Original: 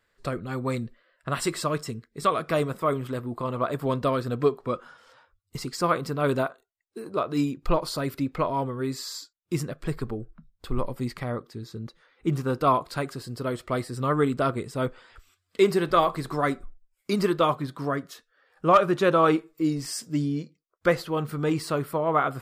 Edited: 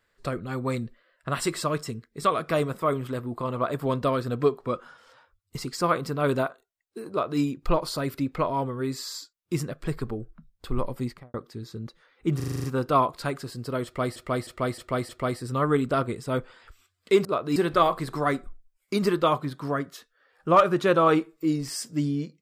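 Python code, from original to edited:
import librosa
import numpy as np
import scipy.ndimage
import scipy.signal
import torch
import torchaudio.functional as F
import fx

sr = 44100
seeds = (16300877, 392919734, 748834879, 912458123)

y = fx.studio_fade_out(x, sr, start_s=11.0, length_s=0.34)
y = fx.edit(y, sr, fx.duplicate(start_s=7.1, length_s=0.31, to_s=15.73),
    fx.stutter(start_s=12.36, slice_s=0.04, count=8),
    fx.repeat(start_s=13.57, length_s=0.31, count=5), tone=tone)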